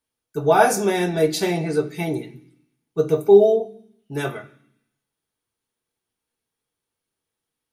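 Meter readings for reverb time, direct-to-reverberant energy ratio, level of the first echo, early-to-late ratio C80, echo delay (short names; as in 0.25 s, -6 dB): 0.65 s, 7.0 dB, none, 18.5 dB, none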